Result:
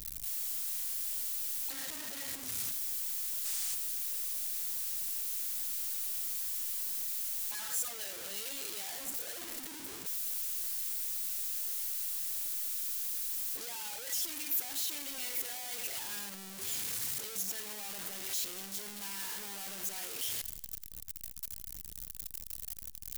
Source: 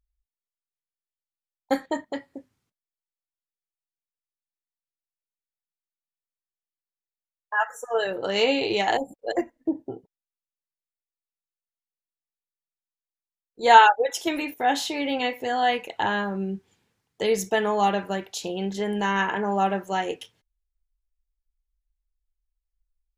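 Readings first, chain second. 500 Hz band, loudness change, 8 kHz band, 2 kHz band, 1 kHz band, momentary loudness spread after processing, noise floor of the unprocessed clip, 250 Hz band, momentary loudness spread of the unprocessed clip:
-26.5 dB, -10.5 dB, +6.5 dB, -18.5 dB, -29.0 dB, 8 LU, under -85 dBFS, -23.0 dB, 10 LU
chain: one-bit comparator; in parallel at -12 dB: sample-rate reducer 1.3 kHz; on the sum: time-frequency box 3.45–3.74 s, 570–10000 Hz +6 dB; pre-emphasis filter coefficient 0.9; modulated delay 85 ms, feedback 55%, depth 92 cents, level -20 dB; trim -5 dB

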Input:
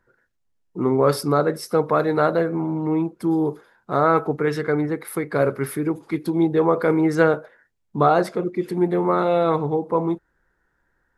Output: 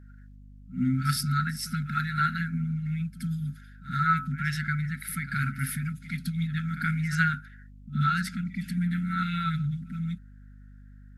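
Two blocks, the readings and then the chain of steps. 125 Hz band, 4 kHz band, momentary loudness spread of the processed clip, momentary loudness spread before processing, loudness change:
+0.5 dB, 0.0 dB, 9 LU, 7 LU, -8.0 dB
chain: reverse echo 75 ms -14 dB; FFT band-reject 260–1300 Hz; hum 50 Hz, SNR 19 dB

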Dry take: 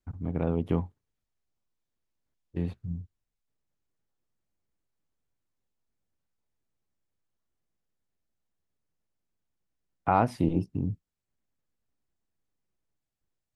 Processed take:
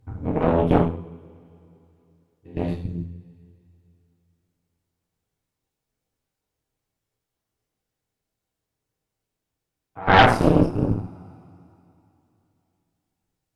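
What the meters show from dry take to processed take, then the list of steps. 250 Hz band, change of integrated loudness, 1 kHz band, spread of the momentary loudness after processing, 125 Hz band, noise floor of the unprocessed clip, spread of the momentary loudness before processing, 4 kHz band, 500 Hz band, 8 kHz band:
+8.5 dB, +10.0 dB, +10.0 dB, 21 LU, +7.5 dB, -85 dBFS, 15 LU, +24.5 dB, +11.5 dB, no reading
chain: pre-echo 113 ms -17.5 dB; two-slope reverb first 0.58 s, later 3 s, from -22 dB, DRR -6 dB; Chebyshev shaper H 6 -9 dB, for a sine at -3 dBFS

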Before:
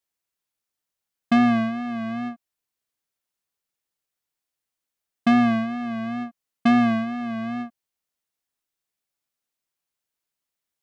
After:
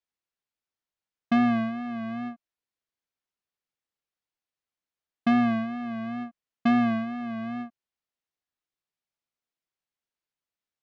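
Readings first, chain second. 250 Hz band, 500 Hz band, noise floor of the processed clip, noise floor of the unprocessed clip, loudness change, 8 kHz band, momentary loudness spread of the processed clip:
-4.0 dB, -4.5 dB, under -85 dBFS, under -85 dBFS, -4.0 dB, no reading, 14 LU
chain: distance through air 96 m; trim -4 dB

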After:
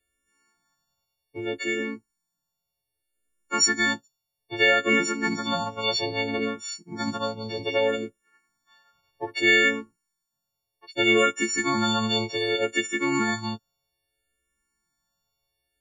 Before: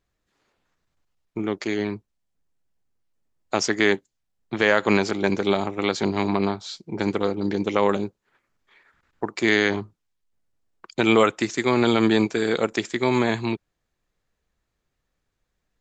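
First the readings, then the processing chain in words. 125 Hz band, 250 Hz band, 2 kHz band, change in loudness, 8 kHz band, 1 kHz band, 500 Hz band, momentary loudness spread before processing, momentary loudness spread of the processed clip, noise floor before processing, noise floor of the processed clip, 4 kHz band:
-7.0 dB, -5.5 dB, +2.0 dB, -1.5 dB, +6.5 dB, -2.5 dB, -4.5 dB, 13 LU, 15 LU, -79 dBFS, -83 dBFS, +3.5 dB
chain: partials quantised in pitch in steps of 4 st; barber-pole phaser -0.63 Hz; trim -2.5 dB

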